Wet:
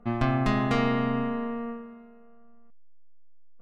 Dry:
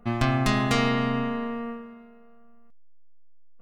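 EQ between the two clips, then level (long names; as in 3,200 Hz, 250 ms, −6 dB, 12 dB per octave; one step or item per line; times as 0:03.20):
low-pass filter 1,500 Hz 6 dB per octave
parametric band 80 Hz −4.5 dB 1.3 octaves
0.0 dB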